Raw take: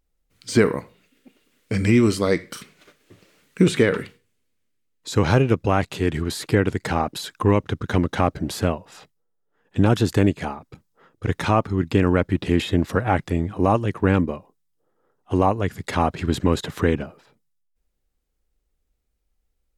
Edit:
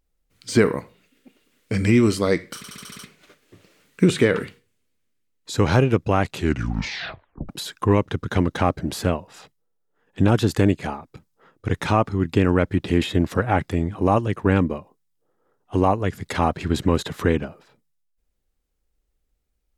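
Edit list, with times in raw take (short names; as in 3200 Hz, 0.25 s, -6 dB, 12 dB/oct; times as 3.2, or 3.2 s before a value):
2.57 stutter 0.07 s, 7 plays
5.92 tape stop 1.15 s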